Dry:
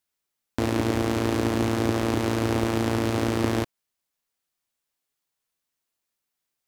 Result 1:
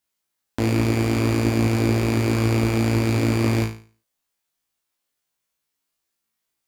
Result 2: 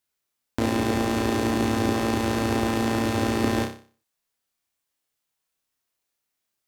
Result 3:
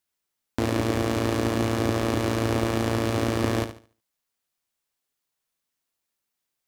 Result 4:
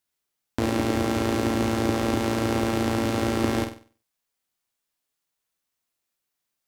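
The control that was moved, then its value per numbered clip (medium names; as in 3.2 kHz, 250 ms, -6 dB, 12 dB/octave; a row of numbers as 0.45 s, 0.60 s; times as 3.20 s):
flutter echo, walls apart: 3.1 m, 5.2 m, 12.4 m, 8.2 m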